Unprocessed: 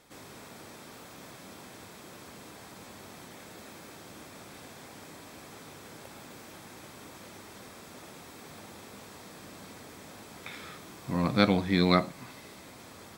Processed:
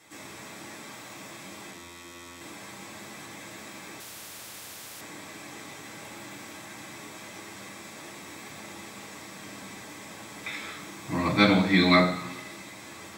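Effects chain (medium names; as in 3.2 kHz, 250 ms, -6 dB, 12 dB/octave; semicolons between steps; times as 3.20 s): 1.71–2.41 s: robot voice 86.7 Hz; reverberation RT60 1.1 s, pre-delay 3 ms, DRR -4 dB; 4.00–5.01 s: spectrum-flattening compressor 4:1; trim +1.5 dB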